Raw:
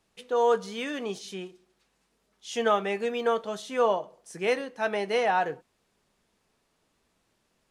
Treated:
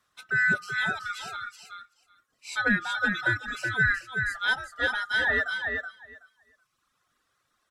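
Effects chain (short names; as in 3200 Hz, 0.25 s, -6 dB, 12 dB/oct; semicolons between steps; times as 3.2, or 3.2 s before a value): band-swap scrambler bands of 1000 Hz; feedback echo 0.375 s, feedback 17%, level -5 dB; reverb removal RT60 1 s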